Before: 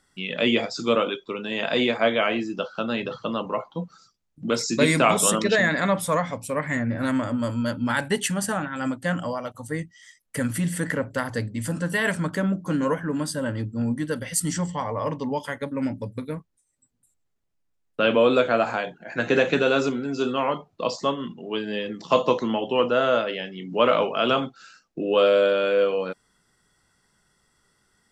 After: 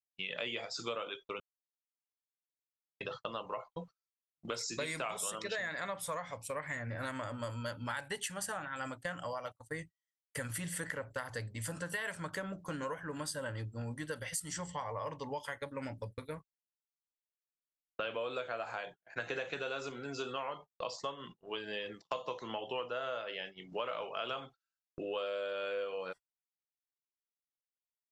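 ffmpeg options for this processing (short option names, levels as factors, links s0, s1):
-filter_complex "[0:a]asplit=3[s0][s1][s2];[s0]atrim=end=1.4,asetpts=PTS-STARTPTS,afade=t=out:st=1.396:d=0.004:c=hsin[s3];[s1]atrim=start=1.4:end=3,asetpts=PTS-STARTPTS,volume=0[s4];[s2]atrim=start=3,asetpts=PTS-STARTPTS,afade=t=in:d=0.004:c=hsin[s5];[s3][s4][s5]concat=n=3:v=0:a=1,agate=range=0.00708:threshold=0.0178:ratio=16:detection=peak,equalizer=f=230:t=o:w=1.3:g=-14.5,acompressor=threshold=0.0282:ratio=6,volume=0.596"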